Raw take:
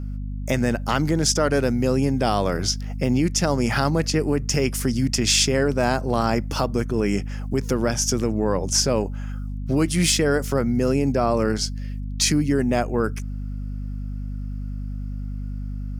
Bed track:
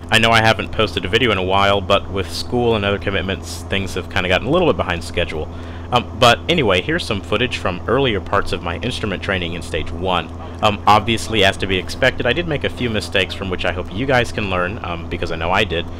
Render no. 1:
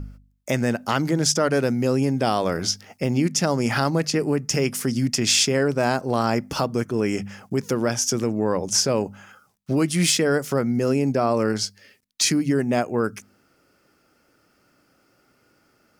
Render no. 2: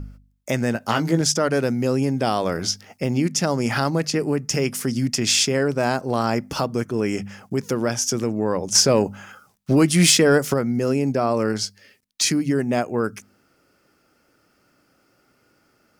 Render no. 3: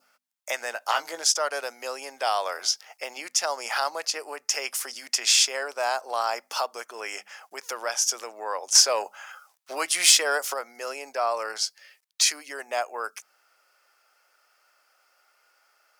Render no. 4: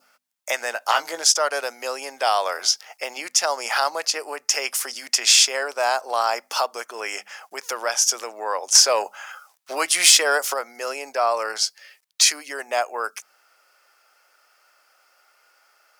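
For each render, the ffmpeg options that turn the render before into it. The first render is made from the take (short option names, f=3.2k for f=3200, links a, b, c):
-af "bandreject=f=50:t=h:w=4,bandreject=f=100:t=h:w=4,bandreject=f=150:t=h:w=4,bandreject=f=200:t=h:w=4,bandreject=f=250:t=h:w=4"
-filter_complex "[0:a]asettb=1/sr,asplit=3[a][b][c];[a]atrim=end=0.734[d];[b]atrim=start=0.73:end=1.21,asetpts=PTS-STARTPTS,afade=t=in:d=0.004:c=qsin,afade=t=out:st=0.476:d=0.004:c=qsin,asplit=2[e][f];[f]adelay=18,volume=-5.5dB[g];[e][g]amix=inputs=2:normalize=0,atrim=end_sample=21168[h];[c]atrim=start=1.206[i];[d][h]acrossfade=d=0.004:c1=hsin:c2=qsin[j];[j][i]acrossfade=d=0.004:c1=qsin:c2=hsin,asettb=1/sr,asplit=3[k][l][m];[k]atrim=end=8.754[n];[l]atrim=start=8.75:end=10.54,asetpts=PTS-STARTPTS,afade=t=in:d=0.004:c=qsin,afade=t=out:st=1.786:d=0.004:c=qsin,acontrast=29[o];[m]atrim=start=10.536[p];[n][o]acrossfade=d=0.004:c1=hsin:c2=qsin[q];[q][p]acrossfade=d=0.004:c1=qsin:c2=hsin"
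-af "highpass=f=680:w=0.5412,highpass=f=680:w=1.3066,adynamicequalizer=threshold=0.00891:dfrequency=1900:dqfactor=1.4:tfrequency=1900:tqfactor=1.4:attack=5:release=100:ratio=0.375:range=2.5:mode=cutabove:tftype=bell"
-af "volume=5dB,alimiter=limit=-2dB:level=0:latency=1"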